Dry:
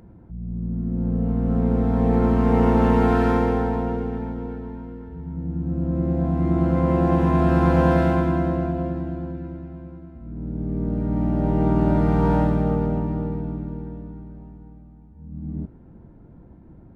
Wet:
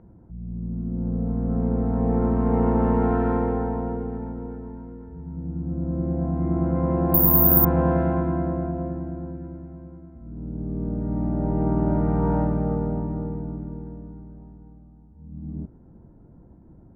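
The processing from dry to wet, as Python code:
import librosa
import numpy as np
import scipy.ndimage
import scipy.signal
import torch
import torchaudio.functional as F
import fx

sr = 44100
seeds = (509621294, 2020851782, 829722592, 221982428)

y = scipy.signal.sosfilt(scipy.signal.butter(2, 1300.0, 'lowpass', fs=sr, output='sos'), x)
y = fx.resample_bad(y, sr, factor=3, down='filtered', up='zero_stuff', at=(7.14, 7.65))
y = F.gain(torch.from_numpy(y), -3.0).numpy()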